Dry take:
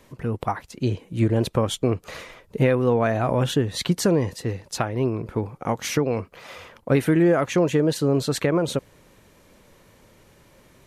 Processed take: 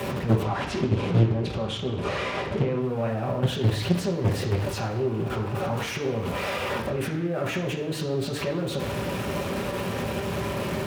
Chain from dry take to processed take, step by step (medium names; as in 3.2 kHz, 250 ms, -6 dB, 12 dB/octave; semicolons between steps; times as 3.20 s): jump at every zero crossing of -24.5 dBFS; 0.44–2.82 s: low-pass 6.3 kHz 12 dB/octave; peak limiter -19.5 dBFS, peak gain reduction 11 dB; bass shelf 130 Hz +6.5 dB; level held to a coarse grid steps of 11 dB; high-pass 50 Hz; bass shelf 260 Hz -6.5 dB; reverberation RT60 0.85 s, pre-delay 3 ms, DRR -2 dB; loudspeaker Doppler distortion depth 0.67 ms; trim -4.5 dB